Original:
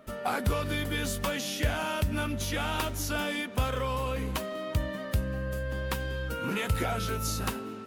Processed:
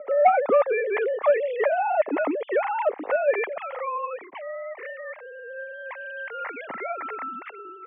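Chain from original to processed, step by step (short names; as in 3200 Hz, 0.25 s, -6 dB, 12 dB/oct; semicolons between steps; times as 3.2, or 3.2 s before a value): sine-wave speech; bell 430 Hz +14 dB 2.6 oct, from 3.58 s -3 dB; soft clip -8.5 dBFS, distortion -19 dB; speaker cabinet 250–2200 Hz, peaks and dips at 340 Hz -8 dB, 1500 Hz -6 dB, 2100 Hz +6 dB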